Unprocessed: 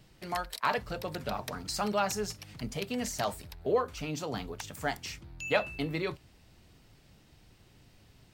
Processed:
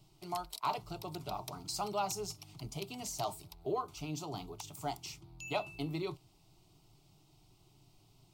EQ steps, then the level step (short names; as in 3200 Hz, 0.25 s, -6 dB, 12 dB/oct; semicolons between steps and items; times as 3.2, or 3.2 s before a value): fixed phaser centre 340 Hz, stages 8; -2.5 dB